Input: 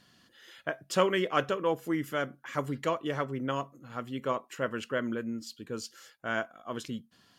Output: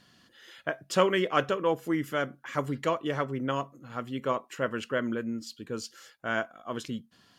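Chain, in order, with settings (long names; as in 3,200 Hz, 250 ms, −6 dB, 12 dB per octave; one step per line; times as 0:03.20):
high-shelf EQ 9,800 Hz −4 dB
level +2 dB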